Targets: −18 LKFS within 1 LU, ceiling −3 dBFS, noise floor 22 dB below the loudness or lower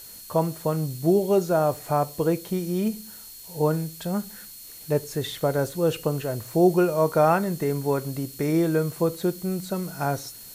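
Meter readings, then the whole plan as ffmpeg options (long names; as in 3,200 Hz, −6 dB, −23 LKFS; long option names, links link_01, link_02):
interfering tone 4,300 Hz; level of the tone −50 dBFS; background noise floor −43 dBFS; target noise floor −47 dBFS; integrated loudness −25.0 LKFS; sample peak −7.5 dBFS; target loudness −18.0 LKFS
→ -af "bandreject=frequency=4300:width=30"
-af "afftdn=noise_reduction=6:noise_floor=-43"
-af "volume=7dB,alimiter=limit=-3dB:level=0:latency=1"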